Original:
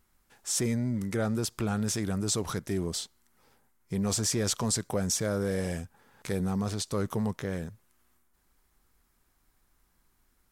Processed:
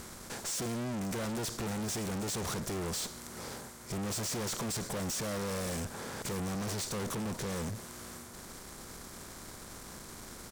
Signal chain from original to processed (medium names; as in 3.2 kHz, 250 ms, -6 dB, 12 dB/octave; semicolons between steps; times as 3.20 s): spectral levelling over time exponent 0.6; valve stage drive 42 dB, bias 0.6; delay 568 ms -22 dB; trim +7.5 dB